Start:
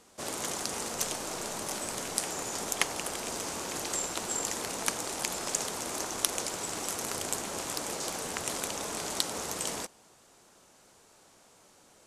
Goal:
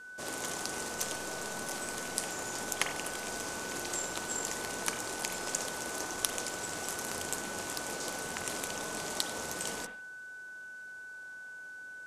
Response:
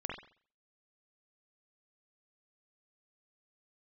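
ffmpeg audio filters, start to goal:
-filter_complex "[0:a]aeval=exprs='val(0)+0.00708*sin(2*PI*1500*n/s)':c=same,asplit=2[s0][s1];[1:a]atrim=start_sample=2205[s2];[s1][s2]afir=irnorm=-1:irlink=0,volume=0.841[s3];[s0][s3]amix=inputs=2:normalize=0,volume=0.422"

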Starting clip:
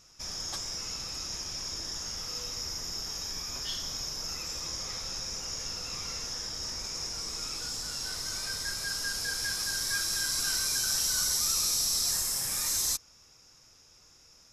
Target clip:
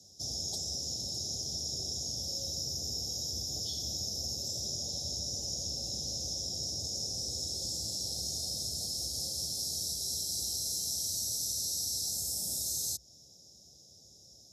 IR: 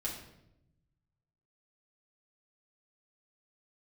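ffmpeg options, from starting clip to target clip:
-af "acompressor=threshold=0.0224:ratio=6,asuperstop=centerf=1600:order=12:qfactor=0.55,afreqshift=57,volume=1.19"

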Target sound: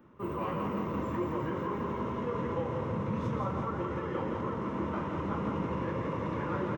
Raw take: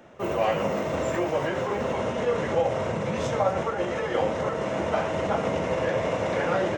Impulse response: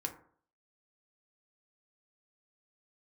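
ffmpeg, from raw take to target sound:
-filter_complex "[0:a]firequalizer=gain_entry='entry(320,0);entry(700,-19);entry(1000,1);entry(1600,-10);entry(7600,-21);entry(13000,-6)':delay=0.05:min_phase=1,asplit=2[s0][s1];[s1]aecho=0:1:171|342|513|684|855|1026|1197|1368:0.562|0.337|0.202|0.121|0.0729|0.0437|0.0262|0.0157[s2];[s0][s2]amix=inputs=2:normalize=0,volume=0.668"

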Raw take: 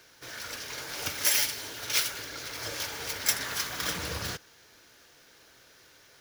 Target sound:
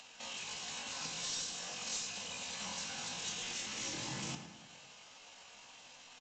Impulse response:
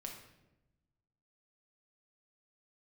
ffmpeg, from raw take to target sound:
-filter_complex "[0:a]acompressor=mode=upward:threshold=0.00251:ratio=2.5,lowshelf=f=230:g=-7,acrossover=split=230|3000[s0][s1][s2];[s1]acompressor=threshold=0.00447:ratio=2.5[s3];[s0][s3][s2]amix=inputs=3:normalize=0,bandreject=f=245.2:t=h:w=4,bandreject=f=490.4:t=h:w=4,bandreject=f=735.6:t=h:w=4,bandreject=f=980.8:t=h:w=4,asetrate=78577,aresample=44100,atempo=0.561231,aresample=16000,asoftclip=type=tanh:threshold=0.0119,aresample=44100,asplit=2[s4][s5];[s5]adelay=109,lowpass=f=3300:p=1,volume=0.316,asplit=2[s6][s7];[s7]adelay=109,lowpass=f=3300:p=1,volume=0.51,asplit=2[s8][s9];[s9]adelay=109,lowpass=f=3300:p=1,volume=0.51,asplit=2[s10][s11];[s11]adelay=109,lowpass=f=3300:p=1,volume=0.51,asplit=2[s12][s13];[s13]adelay=109,lowpass=f=3300:p=1,volume=0.51,asplit=2[s14][s15];[s15]adelay=109,lowpass=f=3300:p=1,volume=0.51[s16];[s4][s6][s8][s10][s12][s14][s16]amix=inputs=7:normalize=0,asplit=2[s17][s18];[1:a]atrim=start_sample=2205,asetrate=57330,aresample=44100[s19];[s18][s19]afir=irnorm=-1:irlink=0,volume=1.68[s20];[s17][s20]amix=inputs=2:normalize=0,volume=0.794"

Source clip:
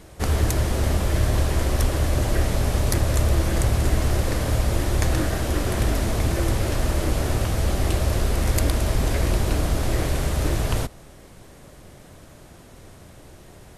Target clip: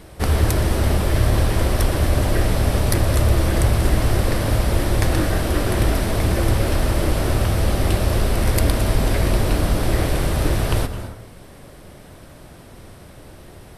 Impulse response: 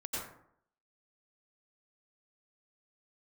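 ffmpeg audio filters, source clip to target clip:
-filter_complex "[0:a]equalizer=f=6800:w=4.3:g=-8.5,asplit=2[s0][s1];[1:a]atrim=start_sample=2205,adelay=120[s2];[s1][s2]afir=irnorm=-1:irlink=0,volume=0.237[s3];[s0][s3]amix=inputs=2:normalize=0,volume=1.5"

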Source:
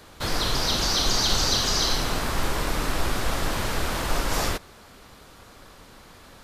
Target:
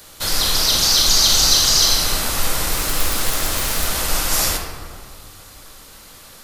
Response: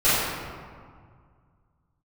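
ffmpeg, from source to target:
-filter_complex "[0:a]crystalizer=i=4.5:c=0,asettb=1/sr,asplit=3[s0][s1][s2];[s0]atrim=end=2.724[s3];[s1]atrim=start=2.72:end=3.86,asetpts=PTS-STARTPTS,afade=t=in:d=0.004:c=qsin,afade=t=out:st=1.136:d=0.004:c=qsin,aeval=exprs='(mod(3.55*val(0)+1,2)-1)/3.55':c=same[s4];[s2]atrim=start=3.856[s5];[s3][s4]acrossfade=d=0.004:c1=hsin:c2=qsin[s6];[s6][s5]acrossfade=d=0.004:c1=qsin:c2=hsin,asplit=2[s7][s8];[1:a]atrim=start_sample=2205[s9];[s8][s9]afir=irnorm=-1:irlink=0,volume=0.0841[s10];[s7][s10]amix=inputs=2:normalize=0,volume=0.75"

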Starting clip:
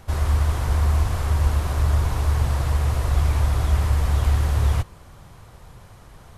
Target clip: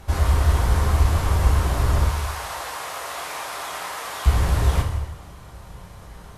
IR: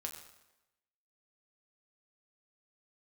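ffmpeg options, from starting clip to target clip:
-filter_complex "[0:a]asettb=1/sr,asplit=3[s0][s1][s2];[s0]atrim=end=2.054[s3];[s1]atrim=start=2.05:end=4.26,asetpts=PTS-STARTPTS,afade=t=in:d=0.004:c=qsin,afade=t=out:st=2.206:d=0.004:c=qsin,highpass=740[s4];[s2]atrim=start=4.256[s5];[s3][s4]acrossfade=d=0.004:c1=hsin:c2=qsin[s6];[s6][s5]acrossfade=d=0.004:c1=qsin:c2=hsin[s7];[1:a]atrim=start_sample=2205,asetrate=33075,aresample=44100[s8];[s7][s8]afir=irnorm=-1:irlink=0,volume=1.58"

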